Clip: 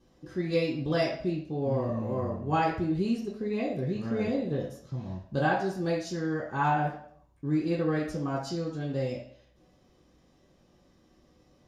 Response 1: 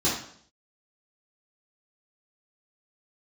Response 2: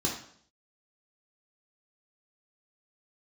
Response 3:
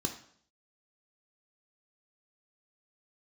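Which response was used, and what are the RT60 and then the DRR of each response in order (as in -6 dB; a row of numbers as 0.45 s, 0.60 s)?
2; 0.60 s, 0.60 s, 0.60 s; -8.5 dB, -2.0 dB, 4.5 dB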